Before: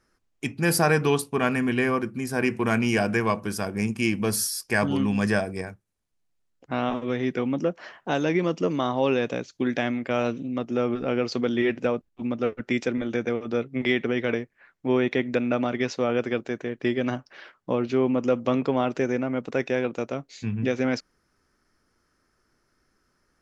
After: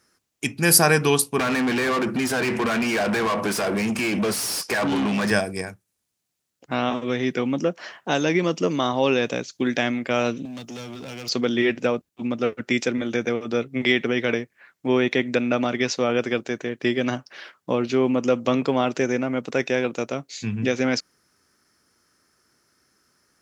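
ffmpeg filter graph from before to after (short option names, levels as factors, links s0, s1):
-filter_complex "[0:a]asettb=1/sr,asplit=3[s0][s1][s2];[s0]atrim=end=1.394[s3];[s1]atrim=start=1.39:end=5.31,asetpts=PTS-STARTPTS,afade=t=in:d=0.004:c=qsin,afade=t=out:st=3.916:d=0.004:c=qsin,acompressor=threshold=0.0355:ratio=3:attack=3.2:release=140:knee=1:detection=peak,asplit=2[s4][s5];[s5]highpass=f=720:p=1,volume=31.6,asoftclip=type=tanh:threshold=0.15[s6];[s4][s6]amix=inputs=2:normalize=0,lowpass=f=1200:p=1,volume=0.501[s7];[s2]atrim=start=5.306[s8];[s3][s7]acrossfade=d=0.004:c1=hsin:c2=qsin[s9];[s9][s8]acrossfade=d=0.004:c1=qsin:c2=hsin,asettb=1/sr,asplit=3[s10][s11][s12];[s10]atrim=end=10.454[s13];[s11]atrim=start=10.45:end=11.29,asetpts=PTS-STARTPTS,afade=t=in:d=0.004:c=qsin,afade=t=out:st=0.836:d=0.004:c=qsin,highshelf=f=5200:g=8.5,acrossover=split=140|3000[s14][s15][s16];[s15]acompressor=threshold=0.0178:ratio=6:attack=3.2:release=140:knee=2.83:detection=peak[s17];[s14][s17][s16]amix=inputs=3:normalize=0,asoftclip=type=hard:threshold=0.02[s18];[s12]atrim=start=11.286[s19];[s13][s18]acrossfade=d=0.004:c1=hsin:c2=qsin[s20];[s20][s19]acrossfade=d=0.004:c1=qsin:c2=hsin,highpass=89,highshelf=f=3300:g=10.5,volume=1.26"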